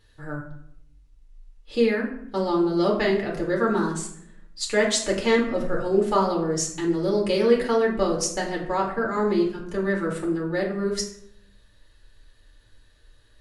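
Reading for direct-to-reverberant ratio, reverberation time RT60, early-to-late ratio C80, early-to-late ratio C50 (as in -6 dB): -2.5 dB, 0.70 s, 9.5 dB, 6.5 dB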